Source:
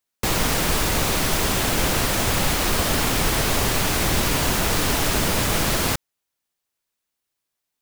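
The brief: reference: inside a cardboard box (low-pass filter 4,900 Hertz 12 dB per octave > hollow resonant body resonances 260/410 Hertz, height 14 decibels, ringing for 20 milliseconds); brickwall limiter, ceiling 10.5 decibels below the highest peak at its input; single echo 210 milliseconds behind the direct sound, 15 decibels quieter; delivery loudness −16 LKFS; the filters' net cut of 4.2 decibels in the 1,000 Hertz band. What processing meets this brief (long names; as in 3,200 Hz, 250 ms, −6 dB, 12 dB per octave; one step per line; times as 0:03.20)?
parametric band 1,000 Hz −5.5 dB
brickwall limiter −19 dBFS
low-pass filter 4,900 Hz 12 dB per octave
single-tap delay 210 ms −15 dB
hollow resonant body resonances 260/410 Hz, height 14 dB, ringing for 20 ms
level +6.5 dB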